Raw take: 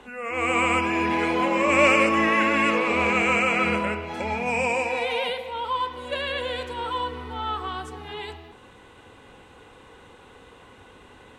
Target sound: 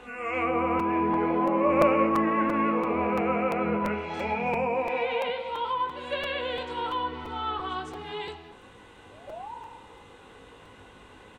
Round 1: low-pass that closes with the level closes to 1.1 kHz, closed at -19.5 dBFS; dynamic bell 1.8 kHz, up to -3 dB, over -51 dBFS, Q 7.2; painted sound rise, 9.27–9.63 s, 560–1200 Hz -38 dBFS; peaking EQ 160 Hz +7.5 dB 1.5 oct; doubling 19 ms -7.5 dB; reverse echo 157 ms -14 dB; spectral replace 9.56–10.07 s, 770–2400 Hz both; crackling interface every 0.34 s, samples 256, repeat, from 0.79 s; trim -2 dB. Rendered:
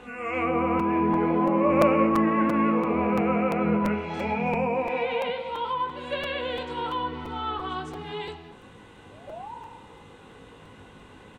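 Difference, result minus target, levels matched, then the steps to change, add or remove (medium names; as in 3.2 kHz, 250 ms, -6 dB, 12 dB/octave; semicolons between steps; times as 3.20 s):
125 Hz band +4.0 dB
remove: peaking EQ 160 Hz +7.5 dB 1.5 oct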